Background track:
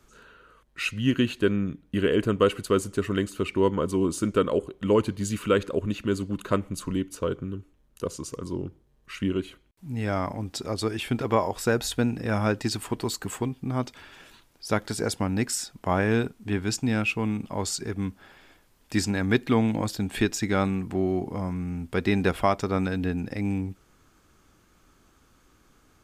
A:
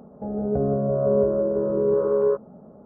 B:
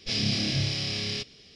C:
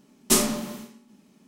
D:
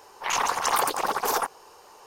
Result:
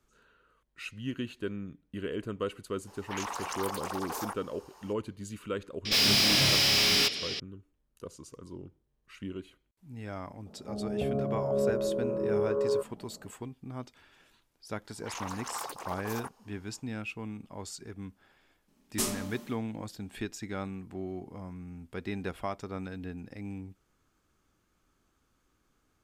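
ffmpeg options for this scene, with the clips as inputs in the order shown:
-filter_complex "[4:a]asplit=2[a][b];[0:a]volume=-12.5dB[c];[a]acompressor=threshold=-32dB:ratio=4:attack=17:release=36:knee=1:detection=rms[d];[2:a]asplit=2[e][f];[f]highpass=f=720:p=1,volume=29dB,asoftclip=type=tanh:threshold=-13.5dB[g];[e][g]amix=inputs=2:normalize=0,lowpass=f=6.7k:p=1,volume=-6dB[h];[d]atrim=end=2.06,asetpts=PTS-STARTPTS,volume=-5.5dB,afade=t=in:d=0.004:c=hsin,afade=t=out:st=2.056:d=0.004:c=hsin,adelay=2870[i];[h]atrim=end=1.55,asetpts=PTS-STARTPTS,volume=-3dB,afade=t=in:d=0.004:c=hsin,afade=t=out:st=1.546:d=0.004:c=hsin,adelay=257985S[j];[1:a]atrim=end=2.85,asetpts=PTS-STARTPTS,volume=-8dB,afade=t=in:d=0.004:c=hsin,afade=t=out:st=2.846:d=0.004:c=hsin,adelay=10460[k];[b]atrim=end=2.06,asetpts=PTS-STARTPTS,volume=-15dB,afade=t=in:d=0.1,afade=t=out:st=1.96:d=0.1,adelay=14820[l];[3:a]atrim=end=1.47,asetpts=PTS-STARTPTS,volume=-11dB,afade=t=in:d=0.004:c=hsin,afade=t=out:st=1.466:d=0.004:c=hsin,adelay=18680[m];[c][i][j][k][l][m]amix=inputs=6:normalize=0"

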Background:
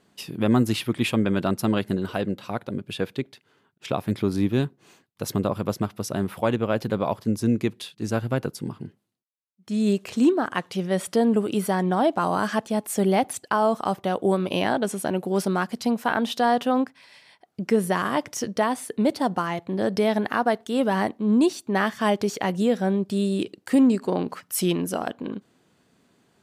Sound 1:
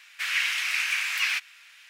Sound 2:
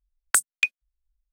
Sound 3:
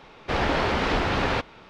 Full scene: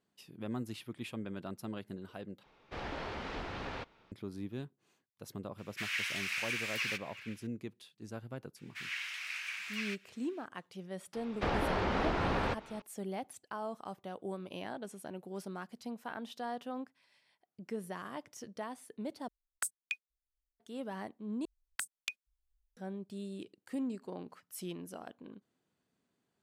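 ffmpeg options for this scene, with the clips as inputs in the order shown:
-filter_complex "[3:a]asplit=2[a][b];[1:a]asplit=2[c][d];[2:a]asplit=2[e][f];[0:a]volume=-19dB[g];[c]asplit=2[h][i];[i]adelay=370,highpass=300,lowpass=3.4k,asoftclip=type=hard:threshold=-21dB,volume=-14dB[j];[h][j]amix=inputs=2:normalize=0[k];[d]equalizer=f=15k:t=o:w=1.4:g=-5[l];[b]acrossover=split=90|1600[m][n][o];[m]acompressor=threshold=-33dB:ratio=4[p];[n]acompressor=threshold=-26dB:ratio=4[q];[o]acompressor=threshold=-40dB:ratio=4[r];[p][q][r]amix=inputs=3:normalize=0[s];[e]equalizer=f=300:t=o:w=0.44:g=-6[t];[f]acompressor=threshold=-31dB:ratio=6:attack=3.2:release=140:knee=1:detection=peak[u];[g]asplit=4[v][w][x][y];[v]atrim=end=2.434[z];[a]atrim=end=1.69,asetpts=PTS-STARTPTS,volume=-17dB[aa];[w]atrim=start=4.116:end=19.284[ab];[t]atrim=end=1.32,asetpts=PTS-STARTPTS,volume=-16dB[ac];[x]atrim=start=20.596:end=21.454[ad];[u]atrim=end=1.32,asetpts=PTS-STARTPTS,volume=-4dB[ae];[y]atrim=start=22.766[af];[k]atrim=end=1.89,asetpts=PTS-STARTPTS,volume=-10dB,afade=t=in:d=0.004:c=hsin,afade=t=out:st=1.886:d=0.004:c=hsin,adelay=5580[ag];[l]atrim=end=1.89,asetpts=PTS-STARTPTS,volume=-13.5dB,afade=t=in:d=0.004:c=hsin,afade=t=out:st=1.886:d=0.004:c=hsin,adelay=8560[ah];[s]atrim=end=1.69,asetpts=PTS-STARTPTS,volume=-4.5dB,afade=t=in:d=0.004:c=hsin,afade=t=out:st=1.686:d=0.004:c=hsin,adelay=11130[ai];[z][aa]acrossfade=d=0.004:c1=hsin:c2=hsin[aj];[aj][ab]acrossfade=d=0.004:c1=hsin:c2=hsin[ak];[ak][ac]acrossfade=d=0.004:c1=hsin:c2=hsin[al];[al][ad]acrossfade=d=0.004:c1=hsin:c2=hsin[am];[am][ae]acrossfade=d=0.004:c1=hsin:c2=hsin[an];[an][af]acrossfade=d=0.004:c1=hsin:c2=hsin[ao];[ao][ag][ah][ai]amix=inputs=4:normalize=0"

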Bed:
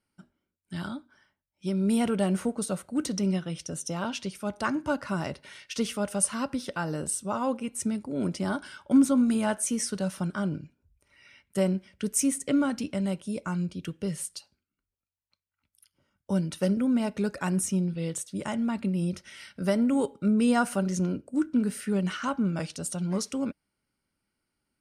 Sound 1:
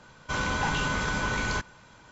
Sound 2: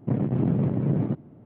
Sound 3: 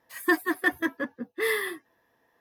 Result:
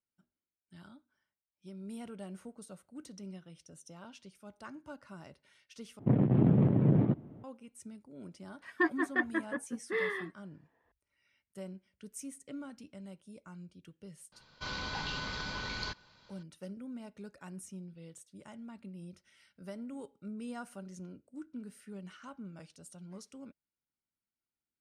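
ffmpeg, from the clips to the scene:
-filter_complex "[0:a]volume=-19dB[a];[3:a]lowpass=2.5k[b];[1:a]lowpass=f=4.5k:t=q:w=4.9[c];[a]asplit=2[d][e];[d]atrim=end=5.994[f];[2:a]atrim=end=1.45,asetpts=PTS-STARTPTS,volume=-1.5dB[g];[e]atrim=start=7.436[h];[b]atrim=end=2.4,asetpts=PTS-STARTPTS,volume=-5.5dB,afade=t=in:d=0.004:c=hsin,afade=t=out:st=2.396:d=0.004:c=hsin,adelay=8520[i];[c]atrim=end=2.11,asetpts=PTS-STARTPTS,volume=-12dB,afade=t=in:d=0.004:c=hsin,afade=t=out:st=2.106:d=0.004:c=hsin,adelay=14320[j];[f][g]acrossfade=d=0.004:c1=hsin:c2=hsin[k];[k][h]acrossfade=d=0.004:c1=hsin:c2=hsin[l];[l][i][j]amix=inputs=3:normalize=0"

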